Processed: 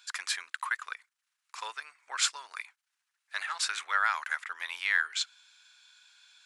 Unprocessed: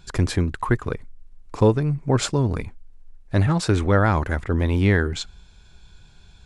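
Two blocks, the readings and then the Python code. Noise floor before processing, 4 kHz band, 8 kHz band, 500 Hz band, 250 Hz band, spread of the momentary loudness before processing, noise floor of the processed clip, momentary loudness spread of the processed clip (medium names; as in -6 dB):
-50 dBFS, 0.0 dB, 0.0 dB, -32.5 dB, under -40 dB, 13 LU, -85 dBFS, 15 LU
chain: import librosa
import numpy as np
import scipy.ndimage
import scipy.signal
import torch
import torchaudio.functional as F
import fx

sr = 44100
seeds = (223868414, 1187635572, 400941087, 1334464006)

y = scipy.signal.sosfilt(scipy.signal.butter(4, 1300.0, 'highpass', fs=sr, output='sos'), x)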